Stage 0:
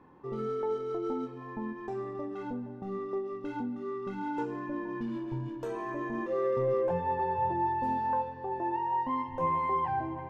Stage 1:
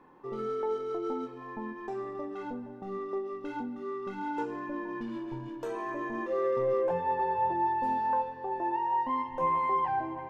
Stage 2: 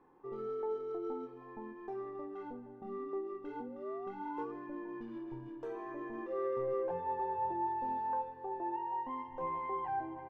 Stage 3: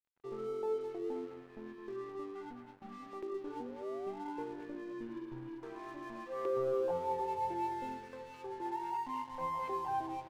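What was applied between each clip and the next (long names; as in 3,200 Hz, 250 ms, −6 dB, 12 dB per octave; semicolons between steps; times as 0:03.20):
parametric band 78 Hz −11.5 dB 2.7 octaves; level +2 dB
low-pass filter 1,600 Hz 6 dB per octave; comb filter 2.5 ms, depth 33%; sound drawn into the spectrogram rise, 0:02.81–0:04.52, 210–1,200 Hz −44 dBFS; level −7 dB
far-end echo of a speakerphone 210 ms, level −7 dB; auto-filter notch saw down 0.31 Hz 340–2,500 Hz; dead-zone distortion −57.5 dBFS; level +1.5 dB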